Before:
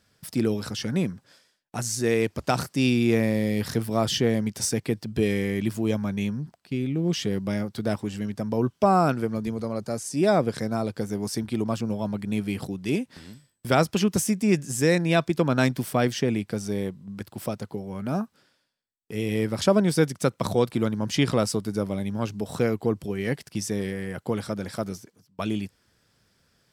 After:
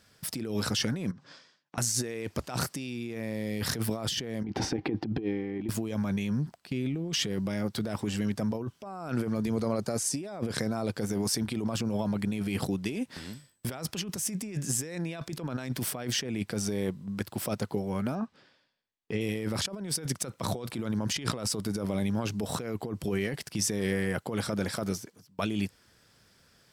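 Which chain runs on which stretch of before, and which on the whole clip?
1.11–1.78 compressor 10:1, threshold -48 dBFS + speaker cabinet 110–6300 Hz, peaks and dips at 150 Hz +10 dB, 280 Hz +5 dB, 1100 Hz +6 dB
4.44–5.69 small resonant body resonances 320/780 Hz, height 14 dB, ringing for 35 ms + negative-ratio compressor -23 dBFS, ratio -0.5 + air absorption 300 m
18.15–19.21 LPF 4200 Hz + notch 1400 Hz, Q 11
whole clip: low shelf 400 Hz -3 dB; negative-ratio compressor -32 dBFS, ratio -1

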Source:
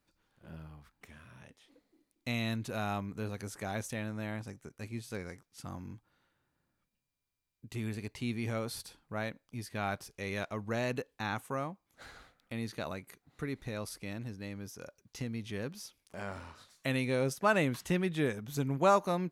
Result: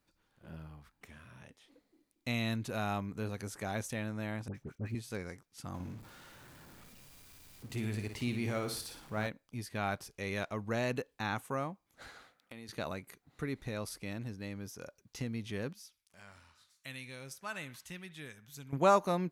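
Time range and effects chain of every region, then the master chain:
4.48–4.95 block floating point 5-bit + tone controls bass +6 dB, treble -13 dB + dispersion highs, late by 66 ms, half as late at 1300 Hz
5.74–9.27 zero-crossing step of -50.5 dBFS + flutter echo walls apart 9.7 m, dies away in 0.43 s
12.09–12.69 HPF 260 Hz 6 dB/oct + compressor, threshold -44 dBFS
15.73–18.73 passive tone stack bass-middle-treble 5-5-5 + narrowing echo 66 ms, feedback 47%, band-pass 1200 Hz, level -14.5 dB
whole clip: dry

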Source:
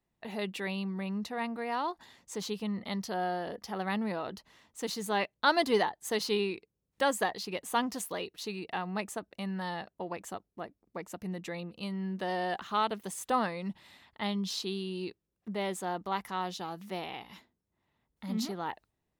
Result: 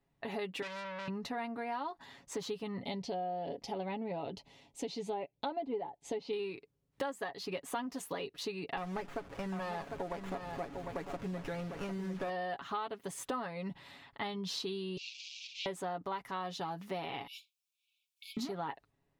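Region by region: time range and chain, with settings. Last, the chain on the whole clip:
0.62–1.08 comb 1.6 ms, depth 52% + core saturation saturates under 4000 Hz
2.8–6.33 treble ducked by the level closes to 1500 Hz, closed at -26 dBFS + band shelf 1400 Hz -13.5 dB 1 oct
8.77–12.3 delta modulation 64 kbps, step -45.5 dBFS + echo 0.751 s -9 dB + running maximum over 9 samples
14.97–15.66 delta modulation 32 kbps, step -35.5 dBFS + steep high-pass 2400 Hz 96 dB/oct + comb 5.1 ms, depth 43%
17.27–18.37 brick-wall FIR high-pass 2200 Hz + tilt +2.5 dB/oct
whole clip: high shelf 5000 Hz -10 dB; comb 7.2 ms, depth 61%; compressor 6:1, threshold -39 dBFS; gain +3.5 dB

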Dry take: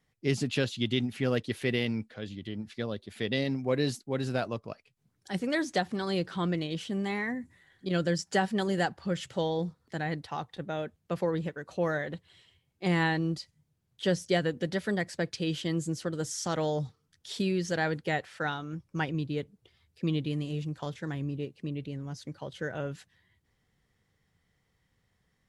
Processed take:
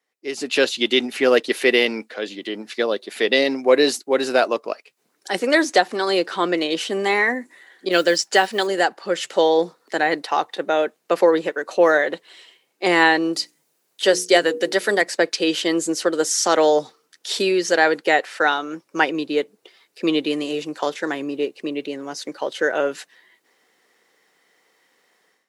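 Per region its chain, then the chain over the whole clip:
7.91–8.67 dynamic EQ 3400 Hz, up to +6 dB, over -45 dBFS, Q 0.85 + modulation noise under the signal 33 dB
13.33–15.02 high shelf 6200 Hz +8 dB + notches 60/120/180/240/300/360/420/480 Hz
whole clip: HPF 330 Hz 24 dB/oct; notch 3300 Hz, Q 18; AGC gain up to 16 dB

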